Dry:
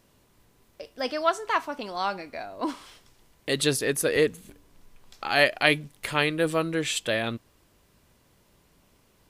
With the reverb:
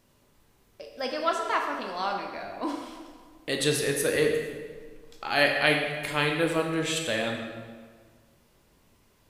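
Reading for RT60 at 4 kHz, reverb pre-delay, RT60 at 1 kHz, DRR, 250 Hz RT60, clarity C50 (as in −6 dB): 1.2 s, 11 ms, 1.6 s, 1.0 dB, 1.8 s, 4.0 dB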